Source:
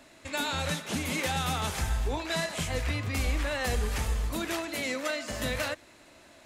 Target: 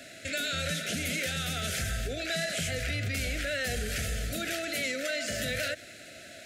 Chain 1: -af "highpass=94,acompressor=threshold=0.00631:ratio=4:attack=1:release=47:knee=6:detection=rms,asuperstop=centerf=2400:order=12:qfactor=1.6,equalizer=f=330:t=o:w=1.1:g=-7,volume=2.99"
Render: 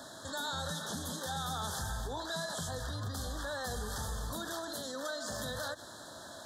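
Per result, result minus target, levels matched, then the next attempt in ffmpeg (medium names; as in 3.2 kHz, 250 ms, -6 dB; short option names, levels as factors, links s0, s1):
1 kHz band +10.0 dB; compression: peak gain reduction +5.5 dB
-af "highpass=94,acompressor=threshold=0.00631:ratio=4:attack=1:release=47:knee=6:detection=rms,asuperstop=centerf=980:order=12:qfactor=1.6,equalizer=f=330:t=o:w=1.1:g=-7,volume=2.99"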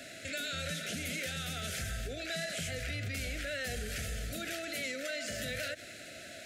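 compression: peak gain reduction +5.5 dB
-af "highpass=94,acompressor=threshold=0.015:ratio=4:attack=1:release=47:knee=6:detection=rms,asuperstop=centerf=980:order=12:qfactor=1.6,equalizer=f=330:t=o:w=1.1:g=-7,volume=2.99"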